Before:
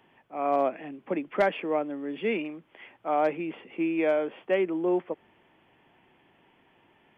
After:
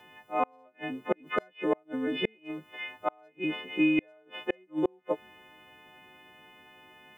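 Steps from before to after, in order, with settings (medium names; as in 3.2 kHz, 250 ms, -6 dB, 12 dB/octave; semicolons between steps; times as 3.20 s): partials quantised in pitch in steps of 3 st; inverted gate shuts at -19 dBFS, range -37 dB; trim +4.5 dB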